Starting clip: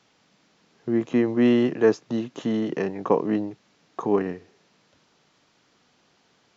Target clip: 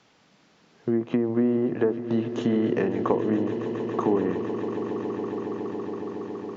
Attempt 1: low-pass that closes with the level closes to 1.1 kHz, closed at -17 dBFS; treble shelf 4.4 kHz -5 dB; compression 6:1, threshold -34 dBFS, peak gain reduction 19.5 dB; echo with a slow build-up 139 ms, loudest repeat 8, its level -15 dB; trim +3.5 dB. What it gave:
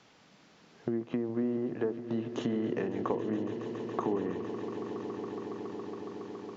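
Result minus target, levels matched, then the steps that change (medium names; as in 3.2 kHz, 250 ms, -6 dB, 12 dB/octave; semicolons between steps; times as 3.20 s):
compression: peak gain reduction +9 dB
change: compression 6:1, threshold -23.5 dBFS, peak gain reduction 10.5 dB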